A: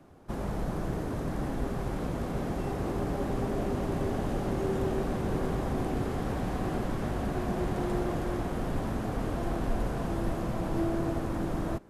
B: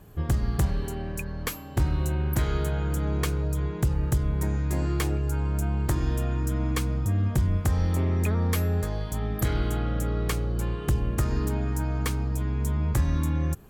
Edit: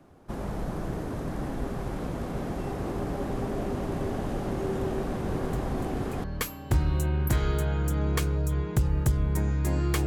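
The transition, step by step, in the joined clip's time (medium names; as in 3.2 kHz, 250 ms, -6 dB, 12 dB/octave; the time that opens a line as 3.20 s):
A
5.27 s: add B from 0.33 s 0.97 s -14.5 dB
6.24 s: go over to B from 1.30 s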